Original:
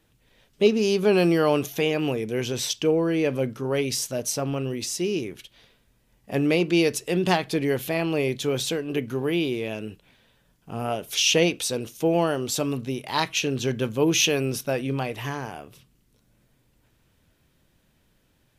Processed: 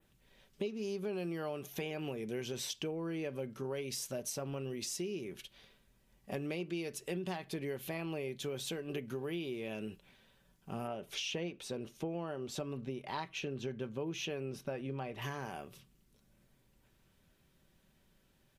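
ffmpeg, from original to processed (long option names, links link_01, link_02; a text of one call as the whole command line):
ffmpeg -i in.wav -filter_complex "[0:a]asettb=1/sr,asplit=3[link_01][link_02][link_03];[link_01]atrim=end=10.874[link_04];[link_02]atrim=start=10.87:end=15.22,asetpts=PTS-STARTPTS,afade=type=in:duration=0.004:curve=qsin,afade=type=out:start_time=4.346:duration=0.004:curve=qsin,lowpass=frequency=2000:poles=1[link_05];[link_03]atrim=start=15.216[link_06];[link_04][link_05]acrossfade=duration=0.004:curve1=hsin:curve2=qsin[link_07];[link_07][link_06]acrossfade=duration=0.004:curve1=qsin:curve2=hsin,adynamicequalizer=threshold=0.00794:dfrequency=5300:dqfactor=0.96:tfrequency=5300:tqfactor=0.96:attack=5:release=100:ratio=0.375:range=2.5:mode=cutabove:tftype=bell,aecho=1:1:5.2:0.33,acompressor=threshold=-31dB:ratio=6,volume=-5.5dB" out.wav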